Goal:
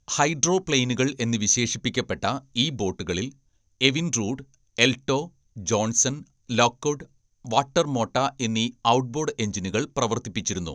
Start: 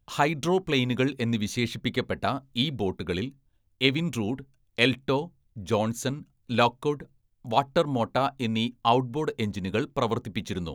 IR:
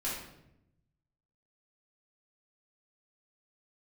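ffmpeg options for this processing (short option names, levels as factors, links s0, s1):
-af "lowpass=f=6200:t=q:w=14,volume=1.19"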